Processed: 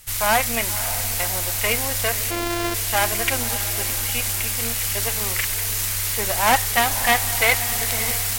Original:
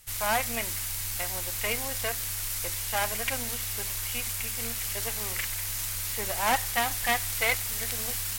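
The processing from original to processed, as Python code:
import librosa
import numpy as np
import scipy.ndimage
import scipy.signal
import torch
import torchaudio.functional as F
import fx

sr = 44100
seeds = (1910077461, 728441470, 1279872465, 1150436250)

y = fx.sample_sort(x, sr, block=128, at=(2.3, 2.73), fade=0.02)
y = fx.echo_diffused(y, sr, ms=572, feedback_pct=46, wet_db=-11.5)
y = F.gain(torch.from_numpy(y), 8.0).numpy()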